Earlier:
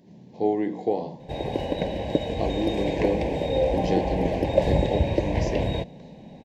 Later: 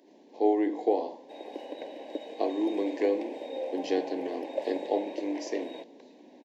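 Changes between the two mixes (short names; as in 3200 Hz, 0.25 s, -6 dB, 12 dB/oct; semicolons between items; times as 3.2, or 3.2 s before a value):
background -11.5 dB; master: add elliptic high-pass 280 Hz, stop band 60 dB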